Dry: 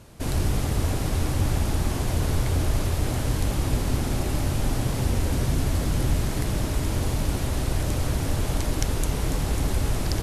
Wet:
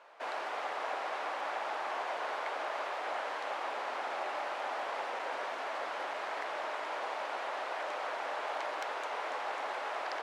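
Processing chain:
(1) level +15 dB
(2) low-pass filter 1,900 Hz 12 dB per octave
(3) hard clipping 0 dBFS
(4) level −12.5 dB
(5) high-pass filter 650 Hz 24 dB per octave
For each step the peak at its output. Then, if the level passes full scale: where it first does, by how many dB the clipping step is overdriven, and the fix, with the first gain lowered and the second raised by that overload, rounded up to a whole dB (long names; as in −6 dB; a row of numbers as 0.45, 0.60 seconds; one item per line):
+8.5, +3.5, 0.0, −12.5, −24.0 dBFS
step 1, 3.5 dB
step 1 +11 dB, step 4 −8.5 dB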